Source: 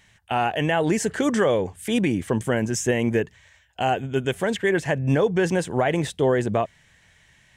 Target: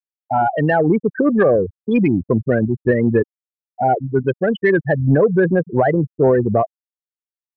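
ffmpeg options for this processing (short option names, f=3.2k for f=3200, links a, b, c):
-af "lowpass=5.6k,afftfilt=real='re*gte(hypot(re,im),0.178)':imag='im*gte(hypot(re,im),0.178)':win_size=1024:overlap=0.75,acontrast=88"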